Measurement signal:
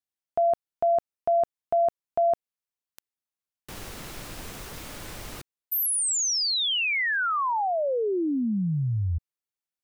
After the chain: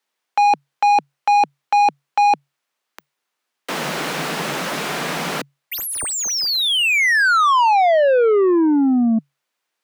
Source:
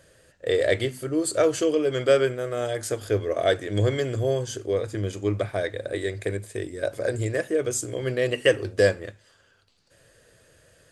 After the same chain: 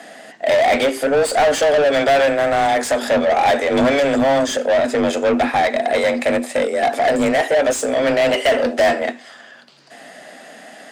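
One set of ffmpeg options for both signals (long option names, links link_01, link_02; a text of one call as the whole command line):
ffmpeg -i in.wav -filter_complex "[0:a]afreqshift=140,asplit=2[link_01][link_02];[link_02]highpass=frequency=720:poles=1,volume=29dB,asoftclip=type=tanh:threshold=-7dB[link_03];[link_01][link_03]amix=inputs=2:normalize=0,lowpass=frequency=2200:poles=1,volume=-6dB" out.wav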